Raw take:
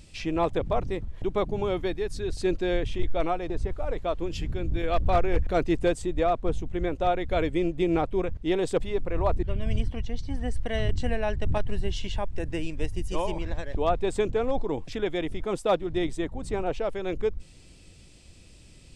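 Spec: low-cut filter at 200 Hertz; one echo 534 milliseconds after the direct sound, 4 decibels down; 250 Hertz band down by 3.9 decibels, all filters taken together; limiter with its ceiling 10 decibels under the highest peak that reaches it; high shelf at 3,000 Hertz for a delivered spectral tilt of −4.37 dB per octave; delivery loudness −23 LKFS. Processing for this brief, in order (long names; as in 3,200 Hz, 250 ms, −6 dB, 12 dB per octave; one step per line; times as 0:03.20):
high-pass filter 200 Hz
parametric band 250 Hz −5 dB
high-shelf EQ 3,000 Hz −6.5 dB
brickwall limiter −23.5 dBFS
single-tap delay 534 ms −4 dB
level +10.5 dB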